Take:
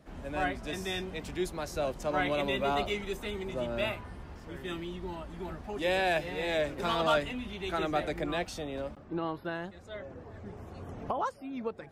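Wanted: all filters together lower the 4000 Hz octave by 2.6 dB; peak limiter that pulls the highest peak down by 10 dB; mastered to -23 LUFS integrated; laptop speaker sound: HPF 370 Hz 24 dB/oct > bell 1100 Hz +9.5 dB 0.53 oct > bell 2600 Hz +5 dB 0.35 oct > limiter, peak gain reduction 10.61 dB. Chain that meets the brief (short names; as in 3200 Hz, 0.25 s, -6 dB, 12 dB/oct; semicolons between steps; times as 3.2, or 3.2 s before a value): bell 4000 Hz -5.5 dB; limiter -27.5 dBFS; HPF 370 Hz 24 dB/oct; bell 1100 Hz +9.5 dB 0.53 oct; bell 2600 Hz +5 dB 0.35 oct; gain +18.5 dB; limiter -13 dBFS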